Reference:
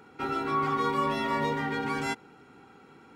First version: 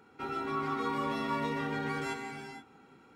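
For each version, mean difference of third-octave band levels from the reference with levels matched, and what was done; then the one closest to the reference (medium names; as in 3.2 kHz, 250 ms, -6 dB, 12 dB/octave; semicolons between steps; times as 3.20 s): 3.5 dB: gated-style reverb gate 500 ms flat, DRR 3 dB; trim -6.5 dB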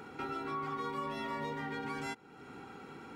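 5.0 dB: compression 2.5:1, threshold -49 dBFS, peak gain reduction 16.5 dB; trim +5 dB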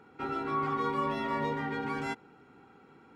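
2.0 dB: treble shelf 4 kHz -9.5 dB; trim -3 dB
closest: third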